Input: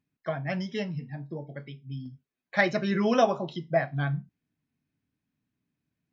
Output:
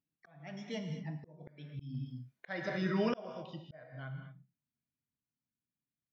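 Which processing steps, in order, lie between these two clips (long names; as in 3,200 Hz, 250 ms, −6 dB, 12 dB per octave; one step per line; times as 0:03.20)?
source passing by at 0:01.92, 20 m/s, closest 4 metres
reverb whose tail is shaped and stops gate 260 ms flat, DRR 7 dB
volume swells 523 ms
level +8 dB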